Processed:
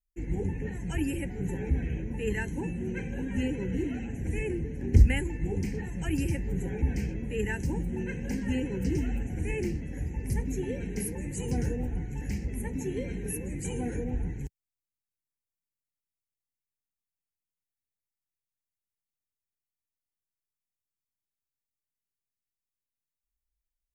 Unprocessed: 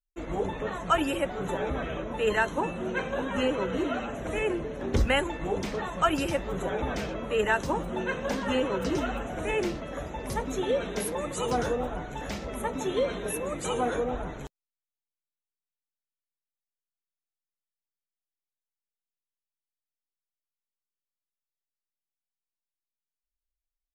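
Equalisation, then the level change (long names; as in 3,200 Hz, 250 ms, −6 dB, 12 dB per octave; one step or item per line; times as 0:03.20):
Butterworth band-reject 1,200 Hz, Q 0.96
parametric band 82 Hz +10 dB 2.1 octaves
phaser with its sweep stopped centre 1,500 Hz, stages 4
0.0 dB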